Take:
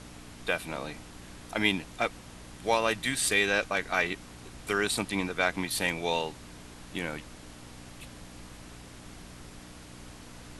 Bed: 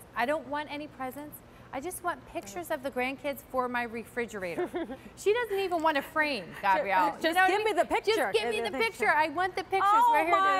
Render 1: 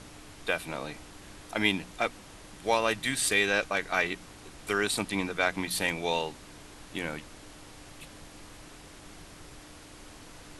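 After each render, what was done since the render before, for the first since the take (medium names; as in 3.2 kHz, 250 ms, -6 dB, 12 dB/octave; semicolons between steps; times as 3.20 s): de-hum 60 Hz, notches 4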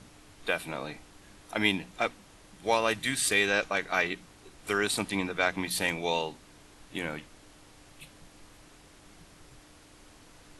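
noise print and reduce 6 dB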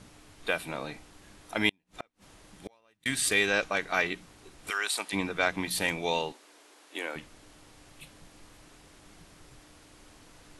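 1.69–3.06 s: inverted gate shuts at -26 dBFS, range -38 dB; 4.69–5.12 s: high-pass 1.1 kHz -> 500 Hz; 6.32–7.16 s: high-pass 330 Hz 24 dB/octave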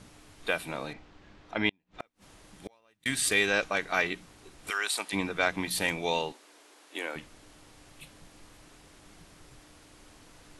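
0.93–2.00 s: distance through air 170 m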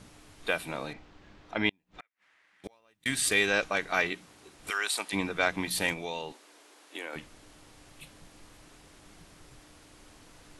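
2.00–2.64 s: band-pass filter 1.9 kHz, Q 2.9; 4.10–4.60 s: high-pass 160 Hz 6 dB/octave; 5.93–7.13 s: compression 2:1, threshold -36 dBFS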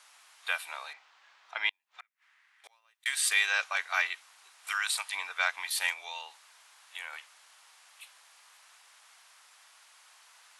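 high-pass 890 Hz 24 dB/octave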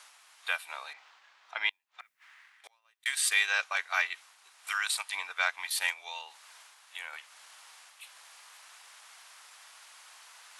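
reverse; upward compressor, threshold -46 dBFS; reverse; transient shaper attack 0 dB, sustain -4 dB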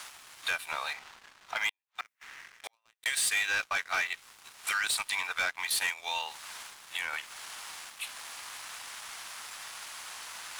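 compression 2:1, threshold -41 dBFS, peak gain reduction 11 dB; waveshaping leveller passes 3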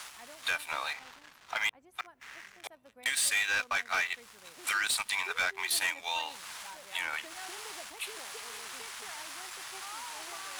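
add bed -24 dB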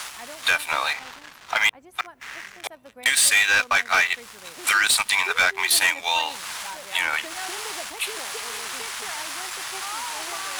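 trim +11 dB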